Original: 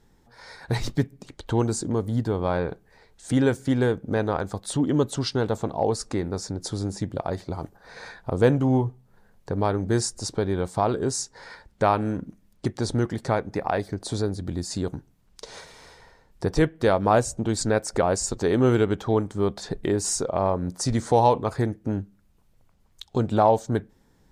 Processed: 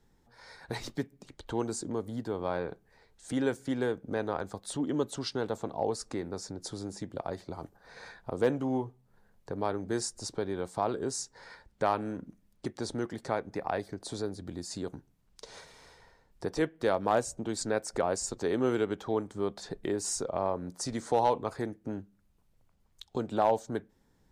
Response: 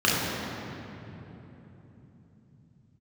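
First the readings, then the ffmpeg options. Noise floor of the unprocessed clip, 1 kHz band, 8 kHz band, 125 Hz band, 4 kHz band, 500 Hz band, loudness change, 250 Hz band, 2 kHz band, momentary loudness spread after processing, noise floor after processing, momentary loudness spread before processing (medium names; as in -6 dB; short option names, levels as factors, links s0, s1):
-61 dBFS, -7.0 dB, -7.0 dB, -15.0 dB, -7.0 dB, -7.5 dB, -8.0 dB, -9.0 dB, -7.0 dB, 14 LU, -68 dBFS, 12 LU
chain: -filter_complex "[0:a]acrossover=split=200[s0][s1];[s0]acompressor=threshold=0.0126:ratio=6[s2];[s2][s1]amix=inputs=2:normalize=0,asoftclip=type=hard:threshold=0.376,volume=0.447"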